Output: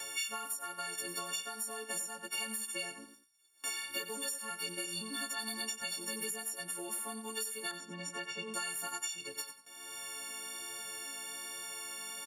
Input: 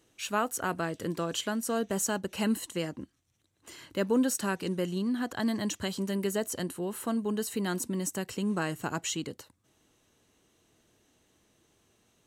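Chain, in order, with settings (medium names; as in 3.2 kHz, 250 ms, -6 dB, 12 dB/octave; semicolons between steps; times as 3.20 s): partials quantised in pitch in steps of 4 st; 7.71–8.54 s: low-pass 1.7 kHz 12 dB/octave; gate with hold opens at -53 dBFS; high-pass 1.1 kHz 6 dB/octave; compression, threshold -31 dBFS, peak gain reduction 15.5 dB; flange 1.2 Hz, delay 1.2 ms, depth 3.7 ms, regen -30%; feedback delay 91 ms, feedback 17%, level -12 dB; three bands compressed up and down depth 100%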